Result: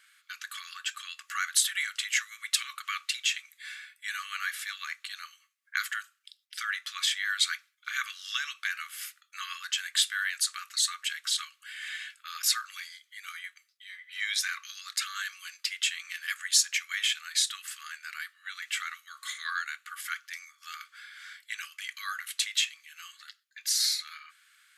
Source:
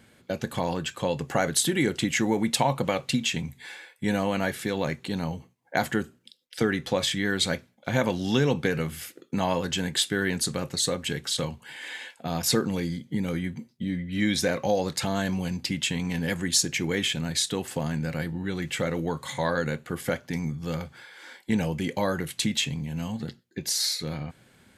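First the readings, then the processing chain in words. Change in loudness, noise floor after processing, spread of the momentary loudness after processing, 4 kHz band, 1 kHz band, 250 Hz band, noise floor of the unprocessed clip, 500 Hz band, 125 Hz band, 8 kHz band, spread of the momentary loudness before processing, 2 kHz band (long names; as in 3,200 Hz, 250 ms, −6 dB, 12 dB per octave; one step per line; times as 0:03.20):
−3.0 dB, −70 dBFS, 17 LU, 0.0 dB, −8.5 dB, below −40 dB, −61 dBFS, below −40 dB, below −40 dB, 0.0 dB, 10 LU, 0.0 dB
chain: linear-phase brick-wall high-pass 1,100 Hz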